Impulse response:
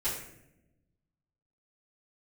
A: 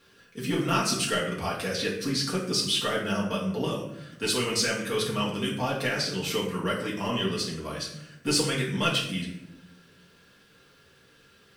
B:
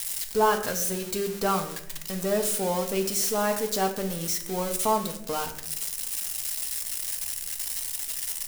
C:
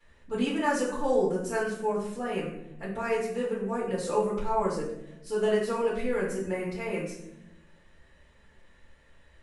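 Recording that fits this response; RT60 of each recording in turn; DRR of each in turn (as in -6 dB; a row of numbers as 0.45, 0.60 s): C; not exponential, not exponential, not exponential; -5.5, 4.0, -13.0 dB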